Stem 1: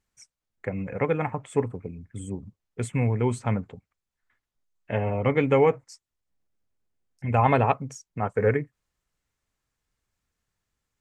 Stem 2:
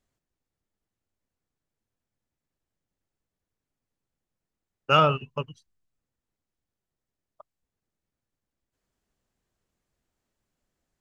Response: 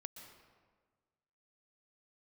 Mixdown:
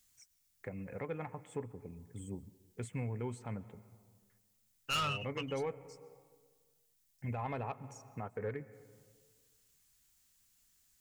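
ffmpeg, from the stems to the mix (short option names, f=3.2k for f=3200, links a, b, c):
-filter_complex "[0:a]volume=-11.5dB,asplit=2[a][b];[b]volume=-7.5dB[c];[1:a]crystalizer=i=6:c=0,equalizer=f=490:t=o:w=1.6:g=-13.5,volume=0dB[d];[2:a]atrim=start_sample=2205[e];[c][e]afir=irnorm=-1:irlink=0[f];[a][d][f]amix=inputs=3:normalize=0,asoftclip=type=tanh:threshold=-19.5dB,alimiter=level_in=5.5dB:limit=-24dB:level=0:latency=1:release=430,volume=-5.5dB"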